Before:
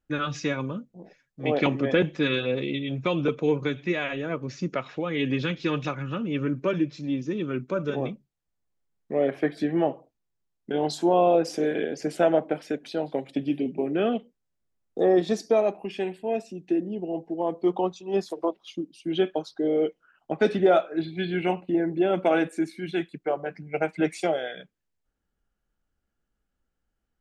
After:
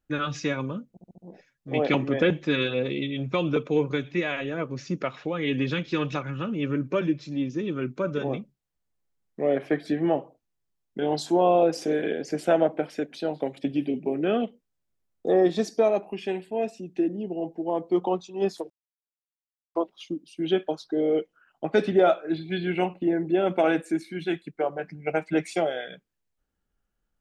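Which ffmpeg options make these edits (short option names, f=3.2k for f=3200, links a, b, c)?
-filter_complex "[0:a]asplit=6[a][b][c][d][e][f];[a]atrim=end=0.972[g];[b]atrim=start=0.898:end=0.972[h];[c]atrim=start=0.898:end=0.972[i];[d]atrim=start=0.898:end=0.972[j];[e]atrim=start=0.898:end=18.42,asetpts=PTS-STARTPTS,afade=t=out:st=17.518:d=0.004:c=hsin,apad=pad_dur=1.05[k];[f]atrim=start=18.42,asetpts=PTS-STARTPTS,afade=t=in:d=0.004:c=hsin[l];[g][h]acrossfade=d=0.004:c1=hsin:c2=hsin[m];[m][i]acrossfade=d=0.004:c1=hsin:c2=hsin[n];[n][j]acrossfade=d=0.004:c1=hsin:c2=hsin[o];[k][l]concat=n=2:v=0:a=1[p];[o][p]acrossfade=d=0.004:c1=hsin:c2=hsin"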